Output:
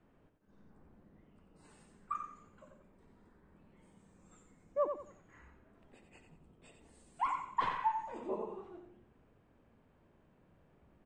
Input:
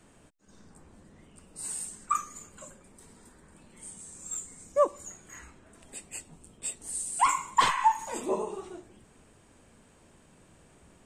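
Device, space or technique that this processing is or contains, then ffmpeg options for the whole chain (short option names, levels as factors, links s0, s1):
phone in a pocket: -af "lowpass=3200,highshelf=f=2100:g=-9.5,aecho=1:1:90|180|270|360:0.447|0.138|0.0429|0.0133,volume=0.376"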